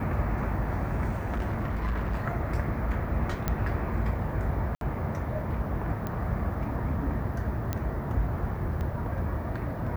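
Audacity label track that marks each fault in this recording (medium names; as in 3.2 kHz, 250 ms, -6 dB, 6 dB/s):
1.090000	2.250000	clipped -25 dBFS
3.480000	3.480000	pop -13 dBFS
4.750000	4.810000	dropout 62 ms
6.070000	6.070000	pop -19 dBFS
7.730000	7.730000	pop -15 dBFS
8.810000	8.810000	pop -23 dBFS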